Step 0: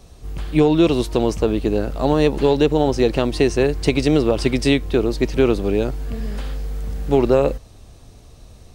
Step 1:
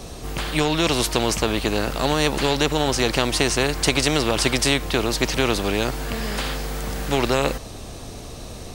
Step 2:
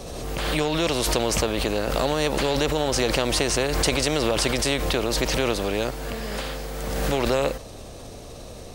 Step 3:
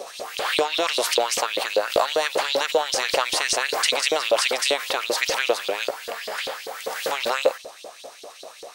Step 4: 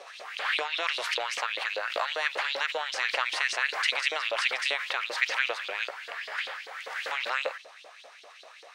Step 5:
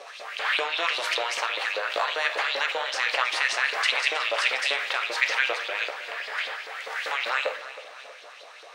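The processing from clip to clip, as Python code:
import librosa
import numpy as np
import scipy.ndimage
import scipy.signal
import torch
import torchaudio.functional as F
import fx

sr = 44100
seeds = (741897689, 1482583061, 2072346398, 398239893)

y1 = fx.spectral_comp(x, sr, ratio=2.0)
y2 = fx.peak_eq(y1, sr, hz=540.0, db=6.5, octaves=0.59)
y2 = fx.pre_swell(y2, sr, db_per_s=26.0)
y2 = y2 * librosa.db_to_amplitude(-5.5)
y3 = fx.filter_lfo_highpass(y2, sr, shape='saw_up', hz=5.1, low_hz=430.0, high_hz=4300.0, q=3.2)
y4 = fx.bandpass_q(y3, sr, hz=1900.0, q=1.5)
y5 = fx.echo_feedback(y4, sr, ms=317, feedback_pct=54, wet_db=-15.0)
y5 = fx.room_shoebox(y5, sr, seeds[0], volume_m3=56.0, walls='mixed', distance_m=0.31)
y5 = y5 * librosa.db_to_amplitude(2.5)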